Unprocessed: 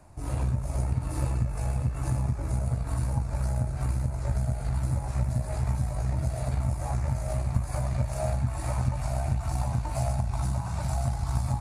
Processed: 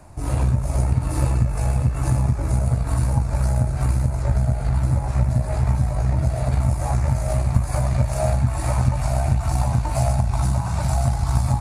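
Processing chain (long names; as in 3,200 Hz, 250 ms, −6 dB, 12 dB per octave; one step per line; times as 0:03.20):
0:04.22–0:06.53: high-shelf EQ 4,800 Hz −6 dB
level +8 dB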